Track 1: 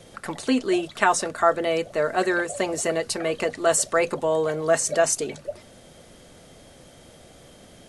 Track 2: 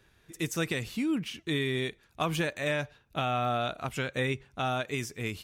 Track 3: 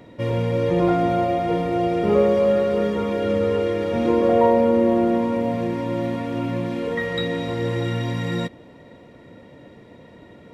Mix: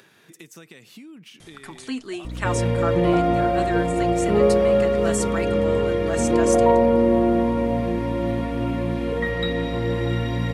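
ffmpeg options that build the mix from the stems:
-filter_complex "[0:a]equalizer=f=530:t=o:w=0.68:g=-13,adelay=1400,volume=-6dB[a];[1:a]highpass=f=150:w=0.5412,highpass=f=150:w=1.3066,acompressor=threshold=-31dB:ratio=6,volume=-12dB[b];[2:a]equalizer=f=6.9k:w=1.7:g=-5,aeval=exprs='val(0)+0.0316*(sin(2*PI*60*n/s)+sin(2*PI*2*60*n/s)/2+sin(2*PI*3*60*n/s)/3+sin(2*PI*4*60*n/s)/4+sin(2*PI*5*60*n/s)/5)':c=same,adelay=2250,volume=0dB[c];[a][b][c]amix=inputs=3:normalize=0,acompressor=mode=upward:threshold=-37dB:ratio=2.5"

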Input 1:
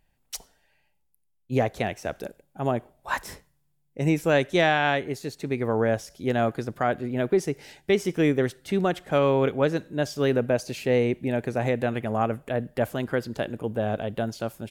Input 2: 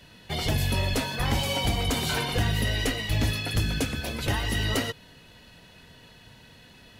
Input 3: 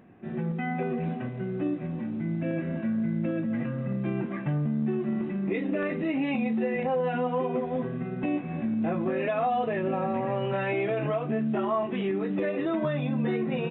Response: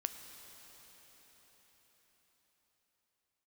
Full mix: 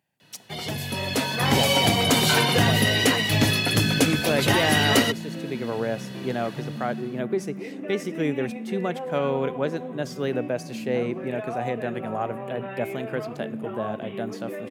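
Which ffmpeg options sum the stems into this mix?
-filter_complex "[0:a]volume=-5dB,asplit=2[a][b];[b]volume=-16dB[c];[1:a]dynaudnorm=f=700:g=3:m=14dB,adelay=200,volume=-4dB[d];[2:a]adelay=2100,volume=-10.5dB,asplit=2[e][f];[f]volume=-3dB[g];[3:a]atrim=start_sample=2205[h];[c][g]amix=inputs=2:normalize=0[i];[i][h]afir=irnorm=-1:irlink=0[j];[a][d][e][j]amix=inputs=4:normalize=0,highpass=f=120:w=0.5412,highpass=f=120:w=1.3066"

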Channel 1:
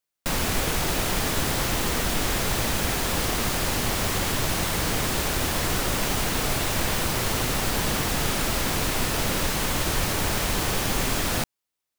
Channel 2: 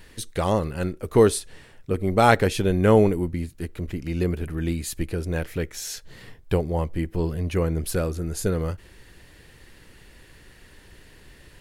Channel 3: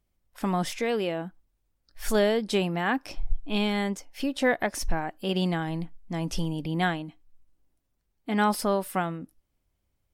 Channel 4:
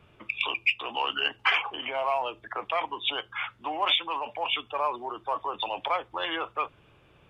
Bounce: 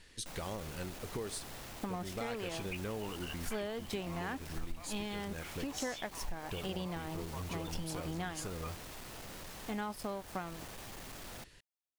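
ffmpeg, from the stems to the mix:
-filter_complex "[0:a]equalizer=f=730:w=1.5:g=3,asoftclip=type=tanh:threshold=-28dB,volume=-17dB[a];[1:a]lowpass=7.5k,acompressor=threshold=-26dB:ratio=2.5,highshelf=f=2.9k:g=11.5,volume=-12.5dB[b];[2:a]aeval=exprs='sgn(val(0))*max(abs(val(0))-0.0126,0)':c=same,adelay=1400,volume=-5dB[c];[3:a]adelay=2050,volume=-18.5dB[d];[a][b][c][d]amix=inputs=4:normalize=0,acompressor=threshold=-35dB:ratio=6"

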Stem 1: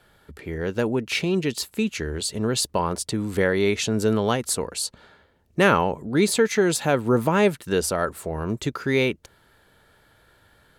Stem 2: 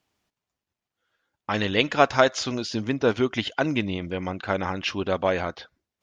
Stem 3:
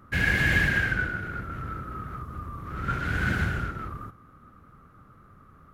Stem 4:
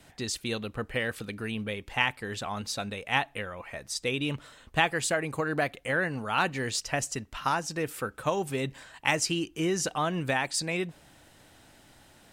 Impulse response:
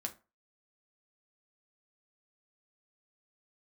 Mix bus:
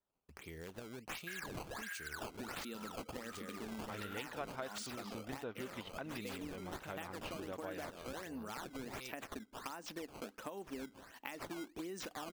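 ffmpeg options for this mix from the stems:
-filter_complex "[0:a]agate=range=-24dB:threshold=-54dB:ratio=16:detection=peak,acompressor=threshold=-27dB:ratio=6,aexciter=amount=3.2:drive=8.2:freq=2.3k,volume=-18dB,asplit=2[a][b];[1:a]lowpass=3.8k,adelay=2400,volume=-15dB[c];[2:a]highpass=f=1.1k:w=0.5412,highpass=f=1.1k:w=1.3066,acompressor=threshold=-32dB:ratio=5,adelay=1150,volume=-5dB[d];[3:a]lowshelf=f=170:t=q:w=3:g=-11.5,adelay=2200,volume=-8dB[e];[b]apad=whole_len=303619[f];[d][f]sidechaincompress=threshold=-42dB:ratio=8:attack=36:release=216[g];[a][g][e]amix=inputs=3:normalize=0,acrusher=samples=14:mix=1:aa=0.000001:lfo=1:lforange=22.4:lforate=1.4,acompressor=threshold=-36dB:ratio=6,volume=0dB[h];[c][h]amix=inputs=2:normalize=0,acompressor=threshold=-44dB:ratio=2.5"

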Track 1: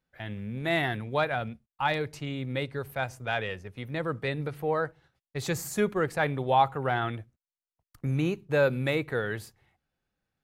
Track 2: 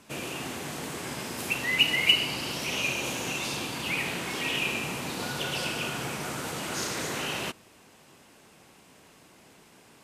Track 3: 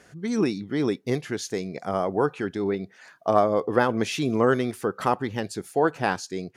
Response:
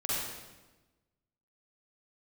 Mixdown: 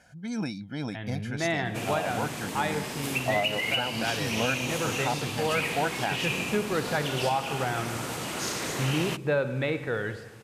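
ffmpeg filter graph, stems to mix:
-filter_complex "[0:a]lowpass=4.2k,adelay=750,volume=-1dB,asplit=2[a][b];[b]volume=-16dB[c];[1:a]bandreject=f=1.5k:w=24,adelay=1650,volume=0.5dB[d];[2:a]aecho=1:1:1.3:0.92,volume=-7dB[e];[3:a]atrim=start_sample=2205[f];[c][f]afir=irnorm=-1:irlink=0[g];[a][d][e][g]amix=inputs=4:normalize=0,alimiter=limit=-16dB:level=0:latency=1:release=375"

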